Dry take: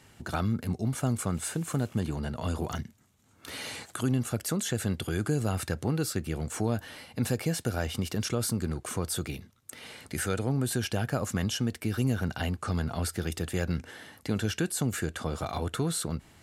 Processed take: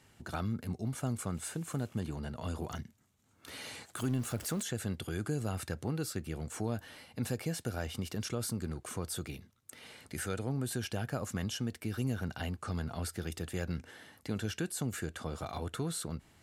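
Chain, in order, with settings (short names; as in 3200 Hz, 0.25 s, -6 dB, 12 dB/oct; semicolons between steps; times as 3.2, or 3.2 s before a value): 3.96–4.63 zero-crossing step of -36.5 dBFS; gain -6.5 dB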